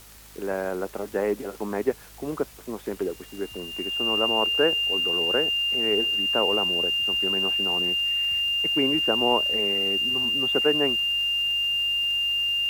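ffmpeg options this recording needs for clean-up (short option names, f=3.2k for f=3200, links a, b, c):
-af "adeclick=t=4,bandreject=f=52.2:t=h:w=4,bandreject=f=104.4:t=h:w=4,bandreject=f=156.6:t=h:w=4,bandreject=f=208.8:t=h:w=4,bandreject=f=261:t=h:w=4,bandreject=f=2.8k:w=30,afftdn=nr=27:nf=-44"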